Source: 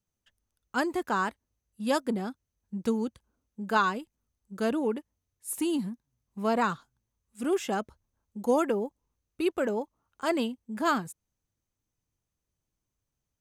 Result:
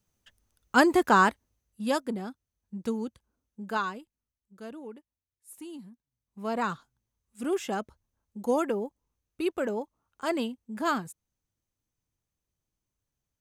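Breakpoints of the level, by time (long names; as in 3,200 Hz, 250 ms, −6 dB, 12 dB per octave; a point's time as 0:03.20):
0:01.26 +8 dB
0:02.11 −3 dB
0:03.60 −3 dB
0:04.59 −14 dB
0:05.88 −14 dB
0:06.72 −1.5 dB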